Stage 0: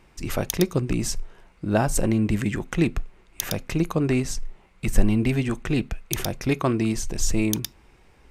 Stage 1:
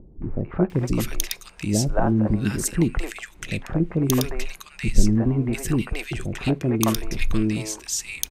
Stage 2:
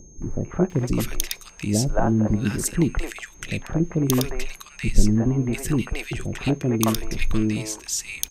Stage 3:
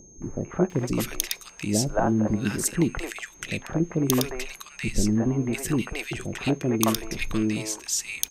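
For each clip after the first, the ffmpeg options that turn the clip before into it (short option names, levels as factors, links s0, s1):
-filter_complex "[0:a]acompressor=mode=upward:threshold=0.0112:ratio=2.5,acrossover=split=480|1600[s0][s1][s2];[s1]adelay=220[s3];[s2]adelay=700[s4];[s0][s3][s4]amix=inputs=3:normalize=0,volume=1.26"
-af "aeval=exprs='val(0)+0.00316*sin(2*PI*6400*n/s)':c=same"
-af "lowshelf=f=110:g=-11.5"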